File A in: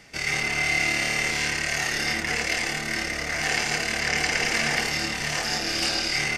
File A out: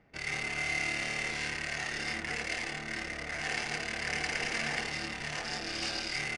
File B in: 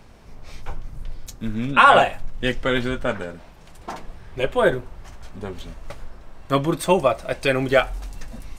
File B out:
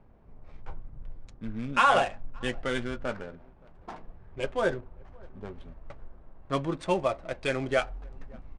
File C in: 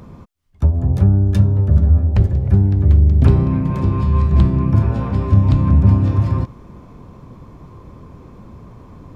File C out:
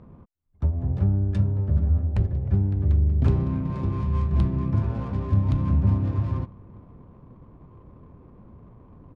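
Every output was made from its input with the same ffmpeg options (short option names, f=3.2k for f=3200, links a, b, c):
-filter_complex "[0:a]asplit=2[a][b];[b]adelay=571.4,volume=-26dB,highshelf=f=4k:g=-12.9[c];[a][c]amix=inputs=2:normalize=0,adynamicsmooth=sensitivity=5.5:basefreq=1.1k,aresample=22050,aresample=44100,volume=-9dB"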